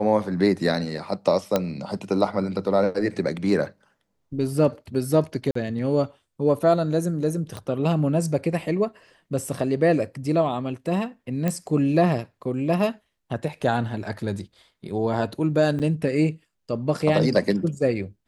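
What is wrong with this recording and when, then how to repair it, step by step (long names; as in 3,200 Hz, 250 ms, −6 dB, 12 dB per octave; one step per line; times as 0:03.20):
0:01.56: click −7 dBFS
0:05.51–0:05.55: drop-out 44 ms
0:07.57: click −20 dBFS
0:11.48: click −12 dBFS
0:15.79–0:15.80: drop-out 7.9 ms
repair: click removal
repair the gap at 0:05.51, 44 ms
repair the gap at 0:15.79, 7.9 ms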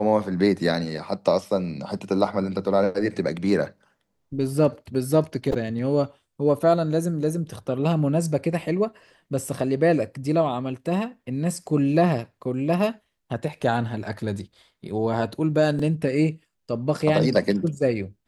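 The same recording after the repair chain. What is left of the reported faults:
0:07.57: click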